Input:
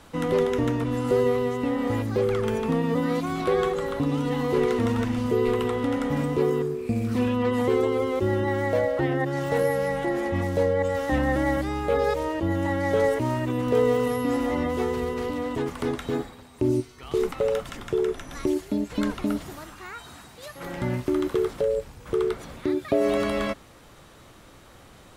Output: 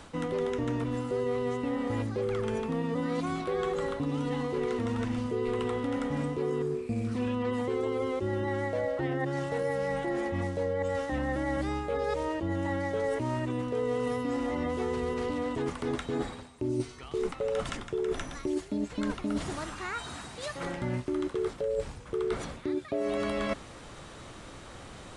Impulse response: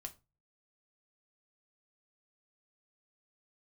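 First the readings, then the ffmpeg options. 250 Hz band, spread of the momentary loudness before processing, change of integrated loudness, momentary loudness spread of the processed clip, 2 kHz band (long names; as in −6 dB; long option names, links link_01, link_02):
−6.0 dB, 7 LU, −6.5 dB, 5 LU, −5.5 dB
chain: -af "areverse,acompressor=threshold=-33dB:ratio=5,areverse,aresample=22050,aresample=44100,volume=4dB"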